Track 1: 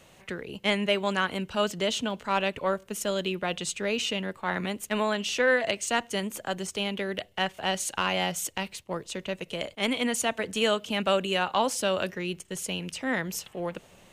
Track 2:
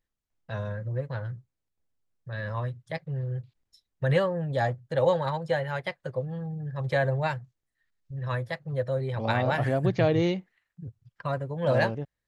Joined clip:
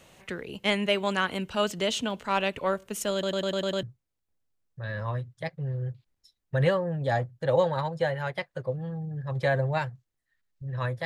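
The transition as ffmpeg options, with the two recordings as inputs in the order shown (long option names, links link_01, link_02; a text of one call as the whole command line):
ffmpeg -i cue0.wav -i cue1.wav -filter_complex "[0:a]apad=whole_dur=11.05,atrim=end=11.05,asplit=7[link_01][link_02][link_03][link_04][link_05][link_06][link_07];[link_01]atrim=end=3.232[link_08];[link_02]atrim=start=3.128:end=3.232[link_09];[link_03]atrim=start=3.128:end=3.232[link_10];[link_04]atrim=start=3.128:end=3.232[link_11];[link_05]atrim=start=3.128:end=3.232[link_12];[link_06]atrim=start=3.128:end=3.232[link_13];[link_07]atrim=start=3.128:end=3.232[link_14];[1:a]atrim=start=1.318:end=8.54[link_15];[link_08][link_09]acrossfade=duration=0.004:curve1=hsin:curve2=hsin[link_16];[link_16][link_10]acrossfade=duration=0.004:curve1=hsin:curve2=hsin[link_17];[link_17][link_11]acrossfade=duration=0.004:curve1=hsin:curve2=hsin[link_18];[link_18][link_12]acrossfade=duration=0.004:curve1=hsin:curve2=hsin[link_19];[link_19][link_13]acrossfade=duration=0.004:curve1=hsin:curve2=hsin[link_20];[link_20][link_14]acrossfade=duration=0.004:curve1=hsin:curve2=hsin[link_21];[link_21][link_15]acrossfade=duration=0.004:curve1=hsin:curve2=hsin" out.wav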